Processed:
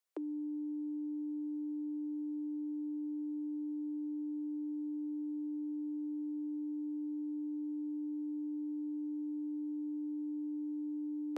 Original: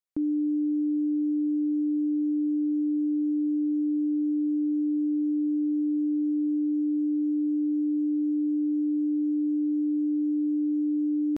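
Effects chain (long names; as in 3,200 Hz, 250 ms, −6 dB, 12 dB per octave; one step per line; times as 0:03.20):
Butterworth high-pass 350 Hz 72 dB per octave
soft clipping −31 dBFS, distortion −37 dB
level +4 dB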